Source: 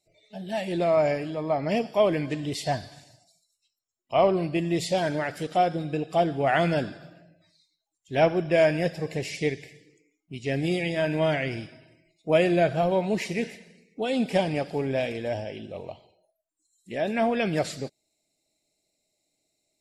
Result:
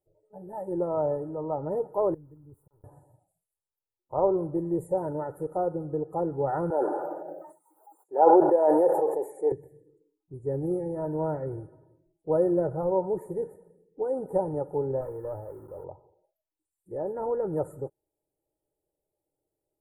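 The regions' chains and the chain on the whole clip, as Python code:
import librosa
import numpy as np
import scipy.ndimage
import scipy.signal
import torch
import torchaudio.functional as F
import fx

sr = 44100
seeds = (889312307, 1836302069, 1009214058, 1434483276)

y = fx.chain(x, sr, fx.tone_stack(knobs='10-0-1'),
    fx.auto_swell(attack_ms=412.0),
    fx.sample_gate(floor_db=-59.5), at=(2.14, 2.84))
y = fx.chain(y, sr, fx.highpass(hz=330.0, slope=24),
    fx.peak_eq(hz=810.0, db=10.0, octaves=0.55),
    fx.sustainer(db_per_s=26.0), at=(6.7, 9.52))
y = fx.chain(y, sr, fx.sample_gate(floor_db=-44.0),
    fx.peak_eq(hz=2400.0, db=9.0, octaves=1.7),
    fx.tube_stage(drive_db=18.0, bias=0.6), at=(15.01, 15.84))
y = scipy.signal.sosfilt(scipy.signal.cheby2(4, 60, [2400.0, 5300.0], 'bandstop', fs=sr, output='sos'), y)
y = fx.high_shelf(y, sr, hz=4500.0, db=-5.0)
y = y + 0.82 * np.pad(y, (int(2.2 * sr / 1000.0), 0))[:len(y)]
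y = y * 10.0 ** (-3.5 / 20.0)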